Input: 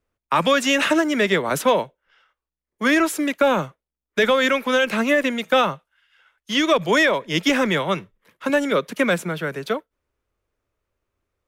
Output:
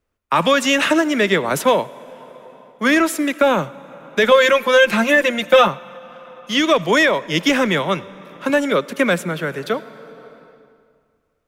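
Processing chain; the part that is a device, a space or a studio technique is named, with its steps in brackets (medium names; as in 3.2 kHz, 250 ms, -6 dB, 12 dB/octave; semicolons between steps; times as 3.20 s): 4.31–5.68 s: comb 5.7 ms, depth 87%; compressed reverb return (on a send at -5 dB: reverberation RT60 2.0 s, pre-delay 65 ms + compression 5:1, threshold -33 dBFS, peak gain reduction 18.5 dB); on the sum: trim +2.5 dB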